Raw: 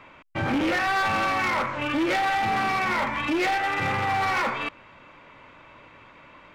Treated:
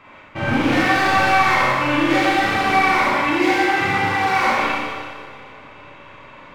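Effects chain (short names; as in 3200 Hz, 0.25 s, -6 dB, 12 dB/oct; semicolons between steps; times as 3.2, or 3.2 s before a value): 3.1–4.38 notch comb 610 Hz; analogue delay 0.109 s, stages 1024, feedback 84%, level -22.5 dB; Schroeder reverb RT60 1.8 s, combs from 30 ms, DRR -7 dB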